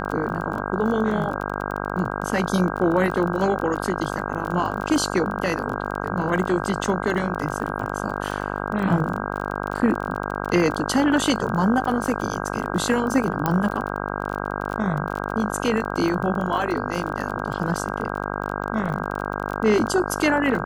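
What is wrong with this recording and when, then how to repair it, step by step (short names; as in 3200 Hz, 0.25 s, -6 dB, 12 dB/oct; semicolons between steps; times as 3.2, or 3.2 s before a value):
buzz 50 Hz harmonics 32 -28 dBFS
crackle 26/s -28 dBFS
13.46 pop -8 dBFS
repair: de-click; de-hum 50 Hz, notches 32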